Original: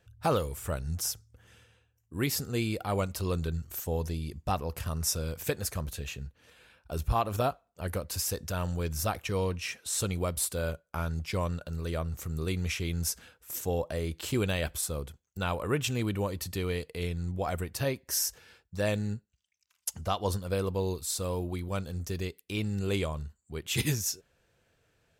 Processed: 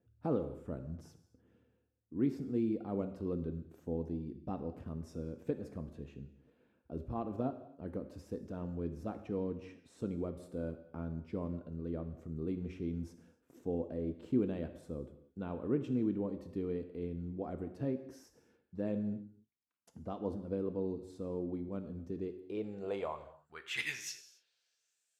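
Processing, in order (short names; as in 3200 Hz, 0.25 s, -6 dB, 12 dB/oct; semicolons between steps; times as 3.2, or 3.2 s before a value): band-pass sweep 270 Hz -> 7900 Hz, 22.12–25.04; non-linear reverb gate 0.31 s falling, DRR 8 dB; gain +2.5 dB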